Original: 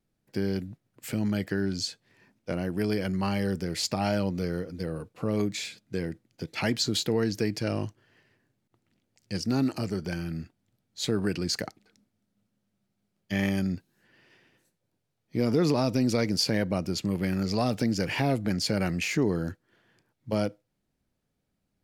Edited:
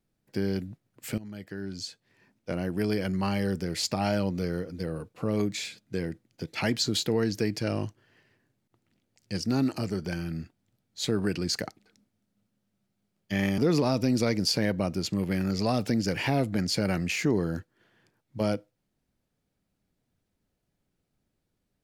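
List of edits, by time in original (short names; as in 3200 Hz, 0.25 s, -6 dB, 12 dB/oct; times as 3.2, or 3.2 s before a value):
1.18–2.66 fade in, from -17.5 dB
13.58–15.5 cut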